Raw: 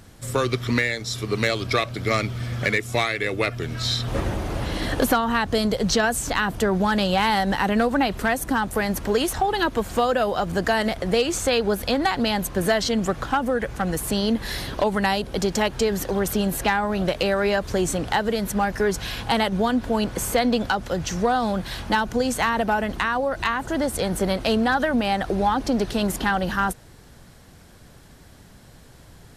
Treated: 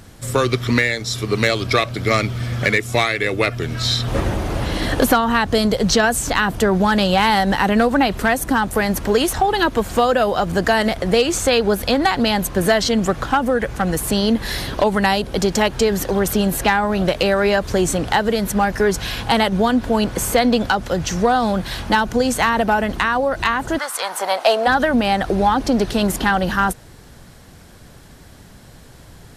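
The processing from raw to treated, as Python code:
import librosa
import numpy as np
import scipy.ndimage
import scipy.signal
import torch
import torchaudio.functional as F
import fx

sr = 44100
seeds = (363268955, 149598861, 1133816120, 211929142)

y = fx.highpass_res(x, sr, hz=fx.line((23.77, 1300.0), (24.66, 610.0)), q=3.1, at=(23.77, 24.66), fade=0.02)
y = y * 10.0 ** (5.0 / 20.0)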